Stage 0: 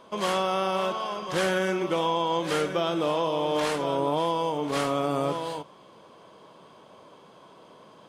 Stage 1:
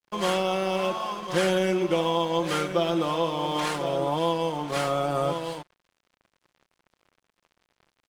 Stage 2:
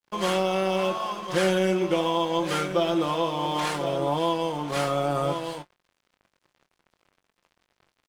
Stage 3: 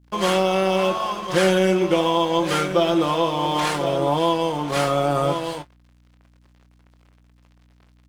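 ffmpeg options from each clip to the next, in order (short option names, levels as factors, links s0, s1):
-af "aecho=1:1:5.7:0.66,aeval=exprs='sgn(val(0))*max(abs(val(0))-0.00668,0)':c=same"
-filter_complex "[0:a]asplit=2[s0][s1];[s1]adelay=21,volume=0.282[s2];[s0][s2]amix=inputs=2:normalize=0"
-af "aeval=exprs='val(0)+0.00112*(sin(2*PI*60*n/s)+sin(2*PI*2*60*n/s)/2+sin(2*PI*3*60*n/s)/3+sin(2*PI*4*60*n/s)/4+sin(2*PI*5*60*n/s)/5)':c=same,volume=1.78"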